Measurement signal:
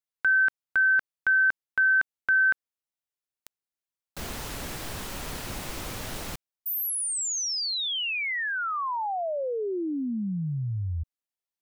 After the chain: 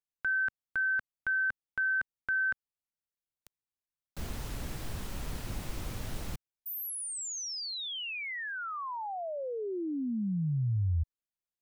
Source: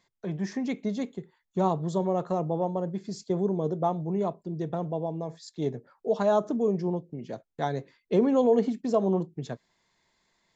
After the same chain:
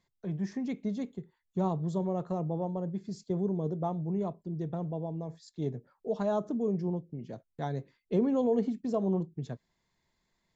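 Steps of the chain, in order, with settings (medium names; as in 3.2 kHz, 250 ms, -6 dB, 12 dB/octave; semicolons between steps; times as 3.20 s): bass shelf 220 Hz +11.5 dB; trim -8.5 dB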